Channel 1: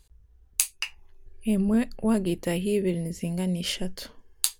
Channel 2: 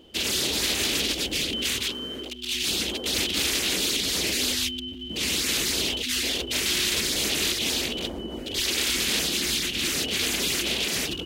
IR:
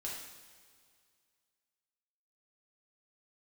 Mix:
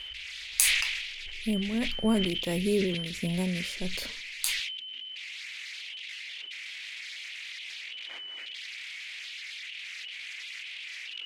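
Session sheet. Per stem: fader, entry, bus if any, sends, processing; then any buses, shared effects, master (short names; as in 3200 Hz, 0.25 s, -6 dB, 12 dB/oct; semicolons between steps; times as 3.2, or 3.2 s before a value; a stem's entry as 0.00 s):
-0.5 dB, 0.00 s, no send, notch 2900 Hz; tremolo 1.5 Hz, depth 71%
-6.0 dB, 0.00 s, no send, ladder band-pass 2400 Hz, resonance 60%; soft clip -26.5 dBFS, distortion -24 dB; fast leveller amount 100%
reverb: off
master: sustainer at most 39 dB/s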